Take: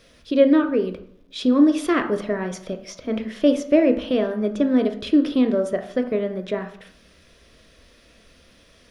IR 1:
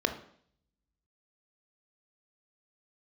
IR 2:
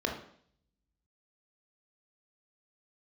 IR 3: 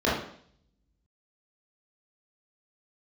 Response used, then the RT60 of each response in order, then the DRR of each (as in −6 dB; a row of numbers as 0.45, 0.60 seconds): 1; 0.60, 0.60, 0.60 seconds; 6.5, 1.0, −8.0 decibels